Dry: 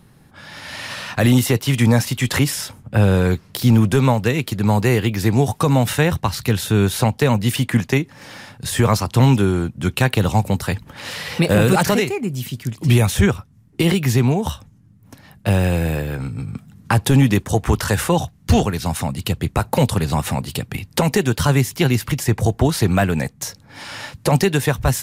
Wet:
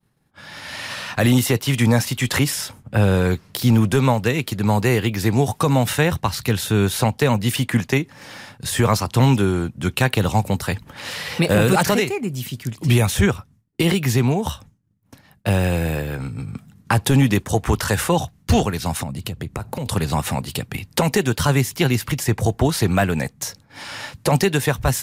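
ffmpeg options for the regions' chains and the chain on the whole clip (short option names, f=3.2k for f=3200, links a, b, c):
-filter_complex "[0:a]asettb=1/sr,asplit=3[a][b][c];[a]atrim=end=19.034[d];[b]atrim=start=19.03:end=19.86,asetpts=PTS-STARTPTS,afade=t=in:d=0.004:c=qsin,afade=t=out:st=0.826:d=0.004:c=qsin,lowshelf=f=470:g=7.5,acompressor=threshold=-23dB:ratio=6:attack=3.2:release=140:knee=1:detection=peak[e];[c]atrim=start=19.856[f];[d][e]acrossfade=d=0.004:c1=hsin:c2=qsin[g];[g][f]acrossfade=d=0.004:c1=qsin:c2=hsin,agate=range=-33dB:threshold=-39dB:ratio=3:detection=peak,lowshelf=f=360:g=-2.5"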